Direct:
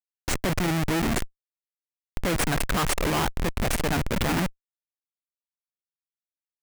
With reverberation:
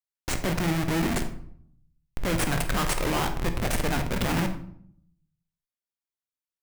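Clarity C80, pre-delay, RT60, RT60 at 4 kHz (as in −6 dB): 12.5 dB, 6 ms, 0.65 s, 0.40 s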